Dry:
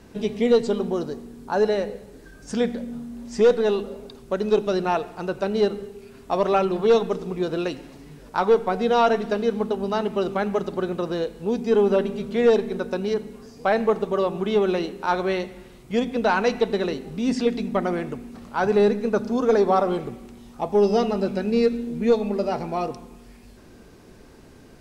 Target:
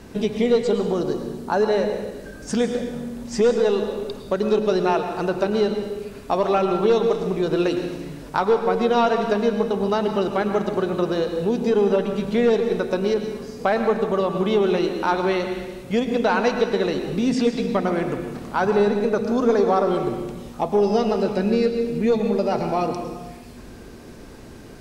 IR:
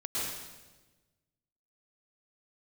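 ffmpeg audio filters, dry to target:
-filter_complex "[0:a]acompressor=threshold=-27dB:ratio=2,asplit=2[a][b];[1:a]atrim=start_sample=2205[c];[b][c]afir=irnorm=-1:irlink=0,volume=-10dB[d];[a][d]amix=inputs=2:normalize=0,volume=4.5dB"

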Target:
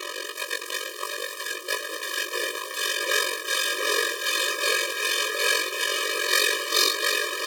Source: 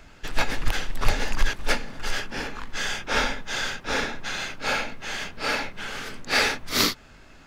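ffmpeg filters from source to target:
-filter_complex "[0:a]aeval=exprs='val(0)+0.5*0.112*sgn(val(0))':c=same,aeval=exprs='val(0)*sin(2*PI*23*n/s)':c=same,asplit=2[a][b];[b]aecho=0:1:710|1314|1826|2263|2633:0.631|0.398|0.251|0.158|0.1[c];[a][c]amix=inputs=2:normalize=0,adynamicsmooth=sensitivity=2.5:basefreq=1.4k,bandreject=f=45.6:t=h:w=4,bandreject=f=91.2:t=h:w=4,bandreject=f=136.8:t=h:w=4,bandreject=f=182.4:t=h:w=4,bandreject=f=228:t=h:w=4,bandreject=f=273.6:t=h:w=4,bandreject=f=319.2:t=h:w=4,bandreject=f=364.8:t=h:w=4,bandreject=f=410.4:t=h:w=4,bandreject=f=456:t=h:w=4,bandreject=f=501.6:t=h:w=4,bandreject=f=547.2:t=h:w=4,bandreject=f=592.8:t=h:w=4,bandreject=f=638.4:t=h:w=4,bandreject=f=684:t=h:w=4,bandreject=f=729.6:t=h:w=4,bandreject=f=775.2:t=h:w=4,bandreject=f=820.8:t=h:w=4,bandreject=f=866.4:t=h:w=4,bandreject=f=912:t=h:w=4,bandreject=f=957.6:t=h:w=4,acrusher=bits=5:mode=log:mix=0:aa=0.000001,acompressor=threshold=-18dB:ratio=6,equalizer=f=10k:w=0.31:g=10,asplit=2[d][e];[e]adelay=19,volume=-4dB[f];[d][f]amix=inputs=2:normalize=0,afftfilt=real='re*eq(mod(floor(b*sr/1024/320),2),1)':imag='im*eq(mod(floor(b*sr/1024/320),2),1)':win_size=1024:overlap=0.75"

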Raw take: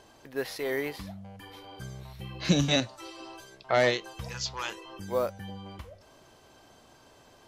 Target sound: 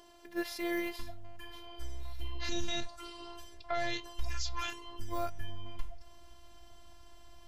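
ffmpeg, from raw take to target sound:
-af "afftfilt=real='hypot(re,im)*cos(PI*b)':imag='0':win_size=512:overlap=0.75,asubboost=boost=10.5:cutoff=110,alimiter=limit=-22dB:level=0:latency=1:release=69,volume=1dB"

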